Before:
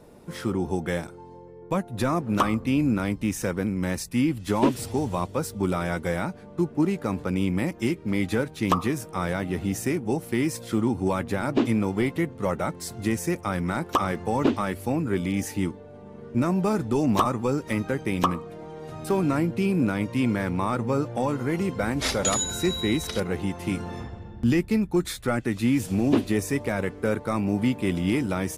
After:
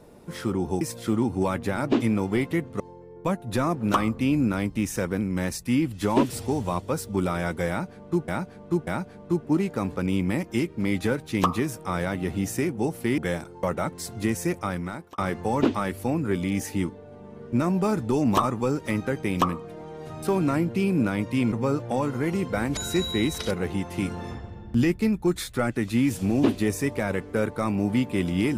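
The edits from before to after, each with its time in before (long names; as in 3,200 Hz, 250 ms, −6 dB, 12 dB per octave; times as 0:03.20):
0:00.81–0:01.26: swap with 0:10.46–0:12.45
0:06.15–0:06.74: repeat, 3 plays
0:13.43–0:14.00: fade out linear
0:20.34–0:20.78: remove
0:22.03–0:22.46: remove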